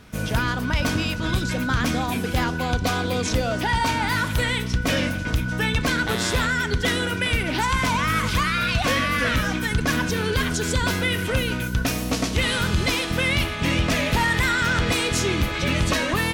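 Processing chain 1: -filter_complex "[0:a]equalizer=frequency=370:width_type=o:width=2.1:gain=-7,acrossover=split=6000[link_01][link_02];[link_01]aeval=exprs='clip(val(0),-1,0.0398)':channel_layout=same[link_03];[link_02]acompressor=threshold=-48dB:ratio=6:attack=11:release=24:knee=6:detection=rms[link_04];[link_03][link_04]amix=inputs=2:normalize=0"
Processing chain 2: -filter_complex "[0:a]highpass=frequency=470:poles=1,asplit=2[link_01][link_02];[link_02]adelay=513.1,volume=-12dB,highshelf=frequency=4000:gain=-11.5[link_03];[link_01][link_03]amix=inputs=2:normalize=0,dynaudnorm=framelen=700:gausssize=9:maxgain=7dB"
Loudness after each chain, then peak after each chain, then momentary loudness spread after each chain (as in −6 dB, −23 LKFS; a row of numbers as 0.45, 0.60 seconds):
−26.5, −18.5 LKFS; −13.0, −4.5 dBFS; 4, 9 LU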